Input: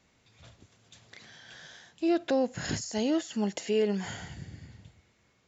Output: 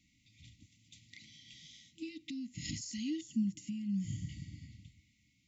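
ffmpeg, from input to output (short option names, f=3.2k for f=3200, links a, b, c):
-filter_complex "[0:a]alimiter=level_in=1dB:limit=-24dB:level=0:latency=1:release=280,volume=-1dB,asettb=1/sr,asplit=3[a][b][c];[a]atrim=end=3.214[d];[b]atrim=start=3.21:end=4.29,asetpts=PTS-STARTPTS,afade=t=in:d=0.004:c=qsin,afade=t=out:st=1.076:d=0.004:c=qsin,equalizer=f=125:t=o:w=1:g=12,equalizer=f=500:t=o:w=1:g=5,equalizer=f=2k:t=o:w=1:g=-11,equalizer=f=4k:t=o:w=1:g=-9[e];[c]atrim=start=4.286[f];[d][e]acrossfade=d=0.004:c1=hsin:c2=qsin[g];[g][f]acrossfade=d=0.004:c1=qsin:c2=hsin,afftfilt=real='re*(1-between(b*sr/4096,330,1900))':imag='im*(1-between(b*sr/4096,330,1900))':win_size=4096:overlap=0.75,volume=-3dB"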